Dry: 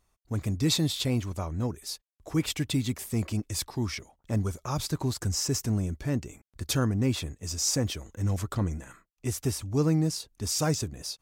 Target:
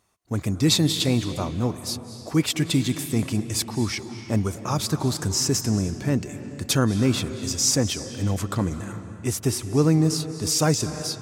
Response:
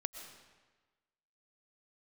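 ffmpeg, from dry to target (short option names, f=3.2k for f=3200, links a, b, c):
-filter_complex "[0:a]highpass=110,asplit=2[a][b];[1:a]atrim=start_sample=2205,asetrate=24255,aresample=44100[c];[b][c]afir=irnorm=-1:irlink=0,volume=-1dB[d];[a][d]amix=inputs=2:normalize=0"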